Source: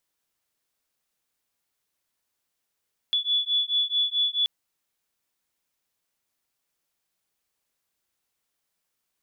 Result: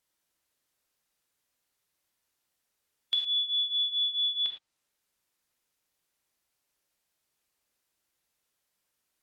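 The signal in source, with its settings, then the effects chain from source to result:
beating tones 3.43 kHz, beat 4.6 Hz, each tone -25 dBFS 1.33 s
low-pass that closes with the level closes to 2.7 kHz, closed at -23.5 dBFS; harmonic-percussive split harmonic -3 dB; gated-style reverb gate 130 ms flat, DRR 2.5 dB

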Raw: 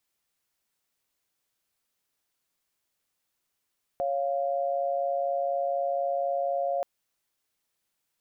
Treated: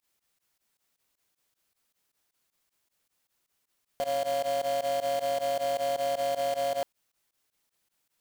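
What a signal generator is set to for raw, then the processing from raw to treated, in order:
chord C#5/F5 sine, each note -28 dBFS 2.83 s
in parallel at -6 dB: integer overflow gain 29 dB; on the sum: volume shaper 156 bpm, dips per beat 2, -22 dB, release 65 ms

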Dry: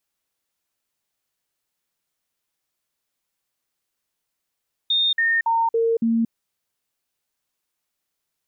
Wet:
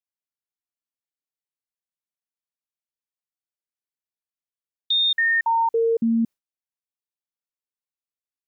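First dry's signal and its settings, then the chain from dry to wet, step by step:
stepped sine 3.66 kHz down, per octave 1, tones 5, 0.23 s, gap 0.05 s -16.5 dBFS
gate with hold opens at -20 dBFS

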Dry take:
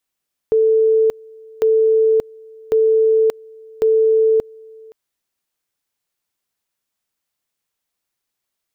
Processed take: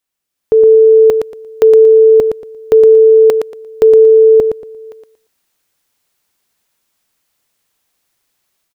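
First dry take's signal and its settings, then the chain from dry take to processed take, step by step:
two-level tone 442 Hz -10.5 dBFS, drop 26.5 dB, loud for 0.58 s, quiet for 0.52 s, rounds 4
level rider gain up to 12 dB; on a send: feedback delay 116 ms, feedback 22%, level -6.5 dB

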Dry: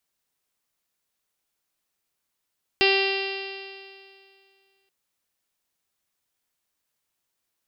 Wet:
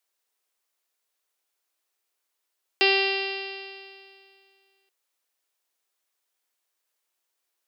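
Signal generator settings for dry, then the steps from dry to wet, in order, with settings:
stretched partials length 2.08 s, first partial 389 Hz, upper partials -7/-16/-14/-7.5/-9/0.5/-7/-12/-9.5/-12/-7.5/-16 dB, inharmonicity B 0.00045, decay 2.29 s, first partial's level -20 dB
high-pass 340 Hz 24 dB/octave

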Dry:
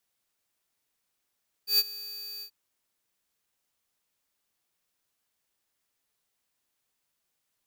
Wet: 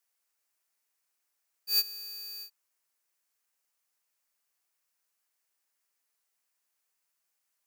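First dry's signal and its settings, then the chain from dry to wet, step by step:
ADSR square 4.62 kHz, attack 118 ms, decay 38 ms, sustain -19.5 dB, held 0.75 s, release 82 ms -20.5 dBFS
high-pass 880 Hz 6 dB/octave; peaking EQ 3.5 kHz -6.5 dB 0.58 oct

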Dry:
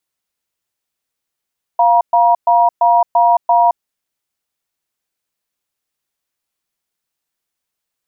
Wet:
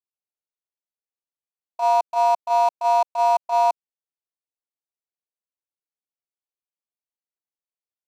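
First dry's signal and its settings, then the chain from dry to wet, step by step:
cadence 698 Hz, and 952 Hz, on 0.22 s, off 0.12 s, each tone -10.5 dBFS 1.93 s
local Wiener filter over 25 samples; gate -10 dBFS, range -14 dB; tone controls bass -14 dB, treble +13 dB

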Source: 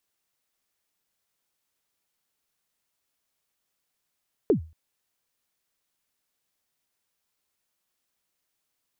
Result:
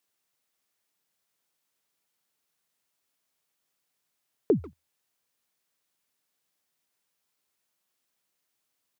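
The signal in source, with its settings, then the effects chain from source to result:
kick drum length 0.23 s, from 480 Hz, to 80 Hz, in 105 ms, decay 0.33 s, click off, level -13 dB
high-pass 100 Hz; speakerphone echo 140 ms, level -17 dB

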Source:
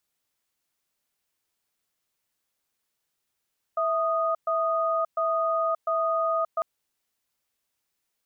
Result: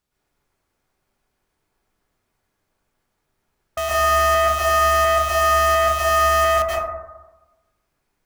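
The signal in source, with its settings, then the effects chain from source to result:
cadence 656 Hz, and 1.24 kHz, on 0.58 s, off 0.12 s, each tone -25 dBFS 2.85 s
tilt EQ -2.5 dB/octave; in parallel at -5 dB: integer overflow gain 21 dB; on the sum: plate-style reverb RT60 1.1 s, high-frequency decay 0.25×, pre-delay 105 ms, DRR -7.5 dB

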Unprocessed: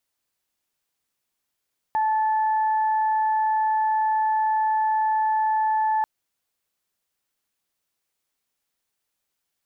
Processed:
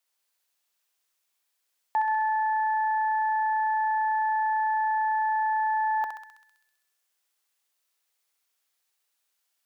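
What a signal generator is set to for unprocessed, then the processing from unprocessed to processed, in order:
steady additive tone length 4.09 s, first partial 871 Hz, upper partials -16.5 dB, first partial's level -19 dB
Bessel high-pass 530 Hz; thinning echo 65 ms, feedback 76%, high-pass 1.1 kHz, level -3.5 dB

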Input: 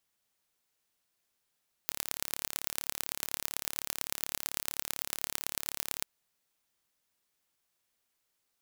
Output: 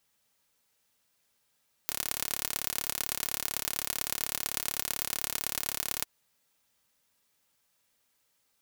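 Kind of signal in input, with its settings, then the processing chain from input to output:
pulse train 35.8 per s, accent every 4, -3.5 dBFS 4.16 s
in parallel at +2.5 dB: peak limiter -11.5 dBFS; on the sum: comb of notches 360 Hz

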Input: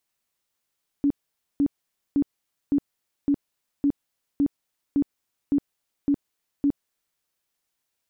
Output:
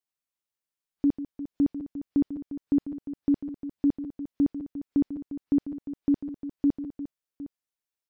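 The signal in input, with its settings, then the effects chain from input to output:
tone bursts 284 Hz, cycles 18, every 0.56 s, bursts 11, -17 dBFS
spectral noise reduction 13 dB; on a send: multi-tap echo 145/352/760 ms -12.5/-13/-15.5 dB

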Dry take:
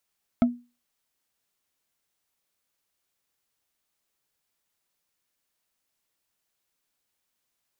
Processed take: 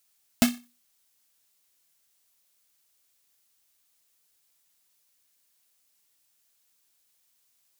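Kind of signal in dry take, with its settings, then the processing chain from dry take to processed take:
wood hit bar, lowest mode 242 Hz, decay 0.30 s, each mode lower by 7 dB, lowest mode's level -13 dB
block-companded coder 3-bit; treble shelf 2.9 kHz +11 dB

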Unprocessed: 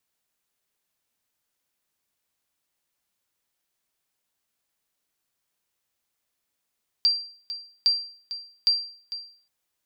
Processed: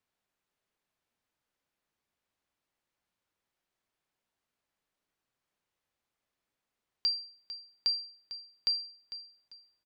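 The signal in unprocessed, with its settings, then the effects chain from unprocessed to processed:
sonar ping 4.72 kHz, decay 0.49 s, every 0.81 s, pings 3, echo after 0.45 s, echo -13.5 dB -13.5 dBFS
low-pass 2.1 kHz 6 dB/octave; delay 845 ms -24 dB

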